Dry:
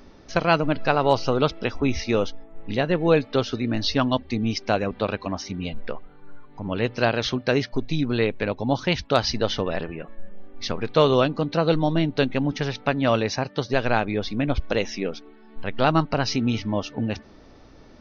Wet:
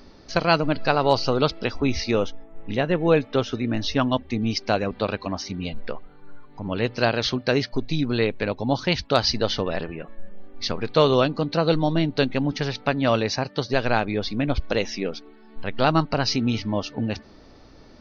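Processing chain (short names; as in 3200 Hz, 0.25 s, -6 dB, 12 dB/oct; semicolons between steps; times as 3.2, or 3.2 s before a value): bell 4500 Hz +9.5 dB 0.29 oct, from 2.11 s -7.5 dB, from 4.42 s +6.5 dB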